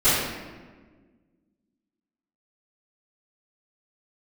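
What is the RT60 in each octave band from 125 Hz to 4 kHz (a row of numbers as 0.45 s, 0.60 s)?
1.8 s, 2.2 s, 1.7 s, 1.3 s, 1.2 s, 0.90 s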